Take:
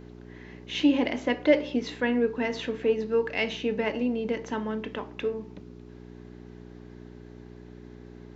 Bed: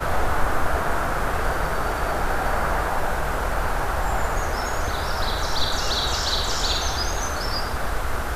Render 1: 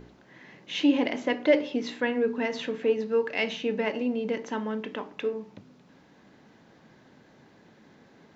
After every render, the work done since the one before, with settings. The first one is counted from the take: de-hum 60 Hz, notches 7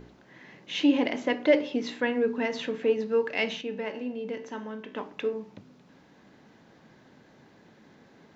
3.61–4.96 s: feedback comb 64 Hz, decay 0.65 s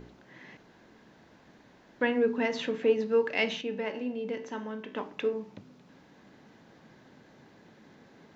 0.57–2.01 s: room tone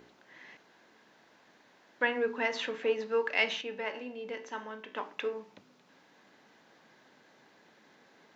high-pass 760 Hz 6 dB/octave; dynamic bell 1.2 kHz, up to +4 dB, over -46 dBFS, Q 0.76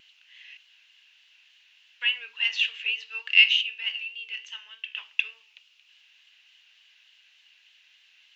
resonant high-pass 2.8 kHz, resonance Q 8.9; vibrato 3.4 Hz 43 cents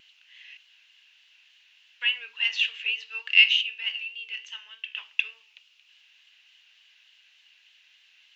no audible change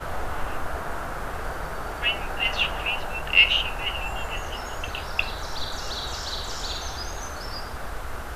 add bed -8 dB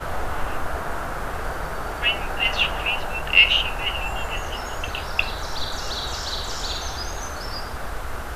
trim +3 dB; peak limiter -3 dBFS, peak gain reduction 1 dB

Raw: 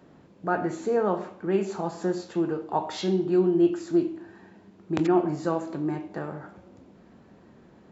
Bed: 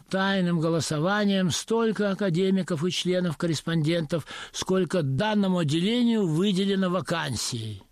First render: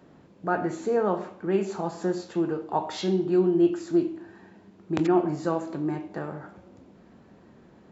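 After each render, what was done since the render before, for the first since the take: no audible change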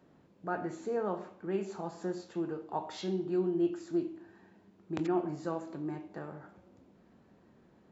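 trim -9 dB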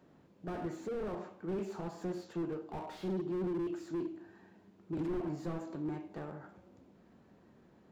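slew-rate limiter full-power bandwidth 7.4 Hz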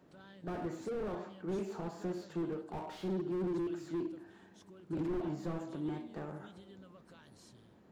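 add bed -32.5 dB

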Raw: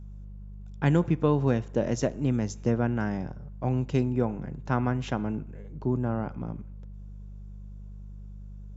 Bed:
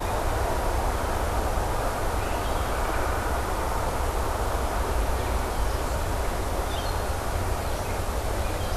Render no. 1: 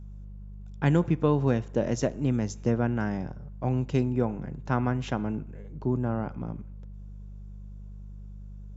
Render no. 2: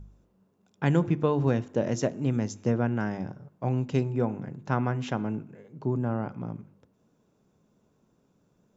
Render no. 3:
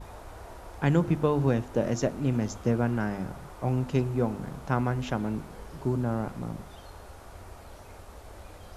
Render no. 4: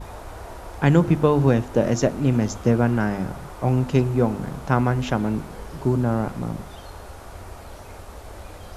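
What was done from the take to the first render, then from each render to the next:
no audible change
de-hum 50 Hz, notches 7
add bed -18.5 dB
trim +7 dB

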